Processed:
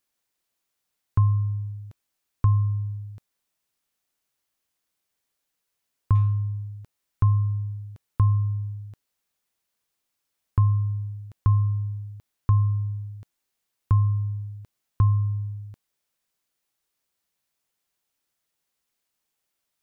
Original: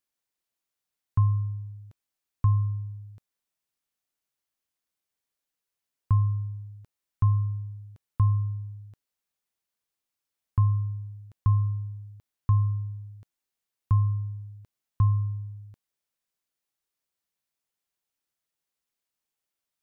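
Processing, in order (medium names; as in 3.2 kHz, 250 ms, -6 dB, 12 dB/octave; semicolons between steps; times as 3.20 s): 6.15–6.57 s: median filter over 25 samples; in parallel at +1 dB: compression, threshold -31 dBFS, peak gain reduction 12.5 dB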